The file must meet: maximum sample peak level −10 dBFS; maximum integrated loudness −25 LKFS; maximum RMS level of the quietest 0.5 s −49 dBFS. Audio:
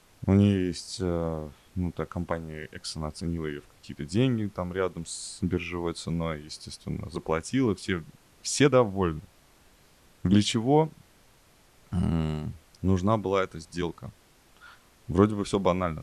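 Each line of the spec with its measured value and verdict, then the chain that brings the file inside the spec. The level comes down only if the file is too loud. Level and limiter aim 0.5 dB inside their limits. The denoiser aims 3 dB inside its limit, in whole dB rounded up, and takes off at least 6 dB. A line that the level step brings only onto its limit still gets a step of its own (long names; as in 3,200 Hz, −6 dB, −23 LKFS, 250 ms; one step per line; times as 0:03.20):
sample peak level −7.0 dBFS: out of spec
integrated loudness −28.0 LKFS: in spec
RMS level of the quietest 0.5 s −59 dBFS: in spec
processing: brickwall limiter −10.5 dBFS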